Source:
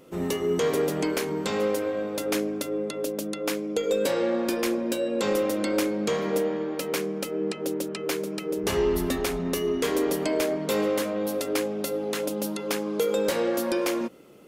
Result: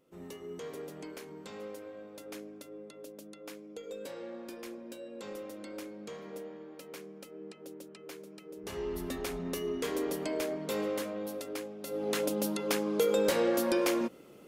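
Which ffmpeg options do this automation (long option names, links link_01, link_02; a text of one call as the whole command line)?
ffmpeg -i in.wav -af "volume=4dB,afade=type=in:start_time=8.53:duration=0.84:silence=0.334965,afade=type=out:start_time=11:duration=0.81:silence=0.473151,afade=type=in:start_time=11.81:duration=0.3:silence=0.237137" out.wav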